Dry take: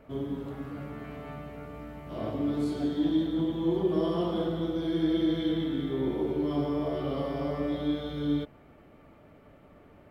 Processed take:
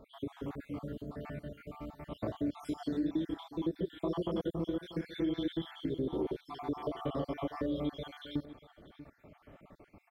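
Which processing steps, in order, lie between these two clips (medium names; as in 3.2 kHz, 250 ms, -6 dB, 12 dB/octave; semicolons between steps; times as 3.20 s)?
random holes in the spectrogram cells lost 55%; on a send: delay 638 ms -18.5 dB; on the sum: compression 3:1, threshold -31 dBFS, peak gain reduction 7 dB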